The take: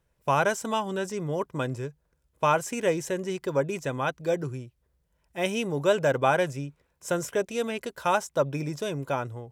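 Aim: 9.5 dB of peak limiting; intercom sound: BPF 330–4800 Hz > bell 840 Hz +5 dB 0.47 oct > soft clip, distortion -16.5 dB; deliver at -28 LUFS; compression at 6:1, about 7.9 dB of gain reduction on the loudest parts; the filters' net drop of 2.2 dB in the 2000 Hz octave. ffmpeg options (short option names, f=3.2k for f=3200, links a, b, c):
-af "equalizer=f=2k:t=o:g=-3.5,acompressor=threshold=-27dB:ratio=6,alimiter=level_in=0.5dB:limit=-24dB:level=0:latency=1,volume=-0.5dB,highpass=330,lowpass=4.8k,equalizer=f=840:t=o:w=0.47:g=5,asoftclip=threshold=-27.5dB,volume=10dB"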